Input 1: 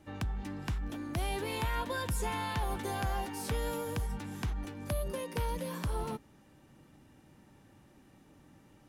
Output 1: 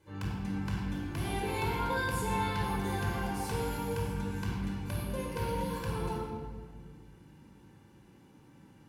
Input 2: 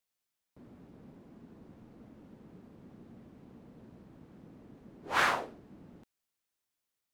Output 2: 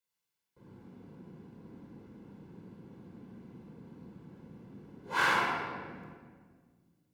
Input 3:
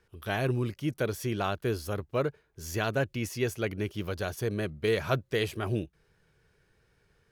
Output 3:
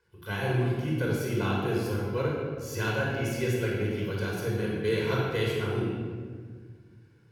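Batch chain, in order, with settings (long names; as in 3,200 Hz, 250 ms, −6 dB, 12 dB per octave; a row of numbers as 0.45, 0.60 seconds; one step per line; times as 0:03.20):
low-shelf EQ 230 Hz −4.5 dB
notch comb filter 620 Hz
rectangular room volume 2,300 cubic metres, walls mixed, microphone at 5 metres
level −5 dB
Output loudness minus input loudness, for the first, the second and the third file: +2.0, −0.5, +2.0 LU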